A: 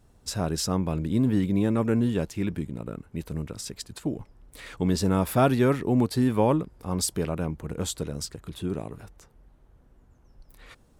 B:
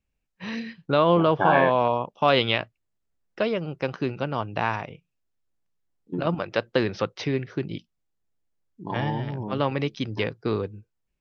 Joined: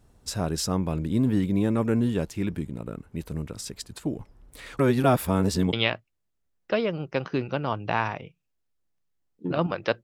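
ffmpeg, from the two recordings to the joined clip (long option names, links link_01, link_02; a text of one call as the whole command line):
ffmpeg -i cue0.wav -i cue1.wav -filter_complex "[0:a]apad=whole_dur=10.03,atrim=end=10.03,asplit=2[link_01][link_02];[link_01]atrim=end=4.792[link_03];[link_02]atrim=start=4.788:end=5.732,asetpts=PTS-STARTPTS,areverse[link_04];[1:a]atrim=start=2.408:end=6.71[link_05];[link_03][link_04]acrossfade=duration=0.004:curve1=hsin:curve2=hsin[link_06];[link_06][link_05]acrossfade=duration=0.004:curve1=hsin:curve2=hsin" out.wav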